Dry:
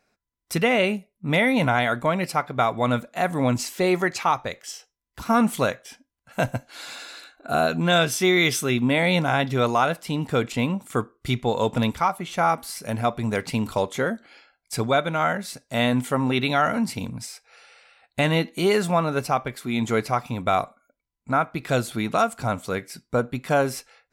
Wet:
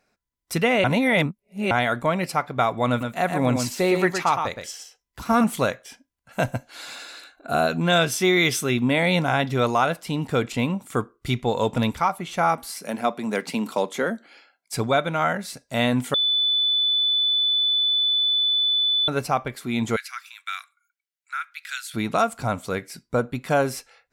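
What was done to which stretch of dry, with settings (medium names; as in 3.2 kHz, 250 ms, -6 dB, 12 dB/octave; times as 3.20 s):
0.84–1.71 s: reverse
2.89–5.44 s: delay 117 ms -6 dB
12.66–14.74 s: steep high-pass 170 Hz
16.14–19.08 s: bleep 3.49 kHz -18 dBFS
19.96–21.94 s: elliptic high-pass 1.5 kHz, stop band 80 dB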